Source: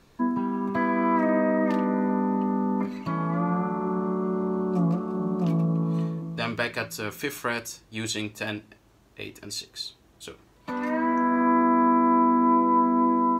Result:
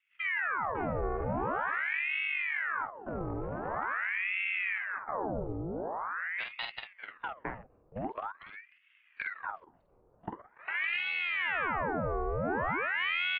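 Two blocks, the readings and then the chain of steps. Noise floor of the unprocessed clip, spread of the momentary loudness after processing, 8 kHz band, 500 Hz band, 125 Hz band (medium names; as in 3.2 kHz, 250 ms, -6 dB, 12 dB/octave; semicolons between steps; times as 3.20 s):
-58 dBFS, 14 LU, under -40 dB, -9.0 dB, -12.5 dB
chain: local Wiener filter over 25 samples; recorder AGC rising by 19 dB/s; dynamic bell 300 Hz, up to +4 dB, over -43 dBFS, Q 6.2; level held to a coarse grid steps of 14 dB; distance through air 290 m; doubling 48 ms -5 dB; mistuned SSB -74 Hz 190–2100 Hz; ring modulator with a swept carrier 1.3 kHz, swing 85%, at 0.45 Hz; trim -3 dB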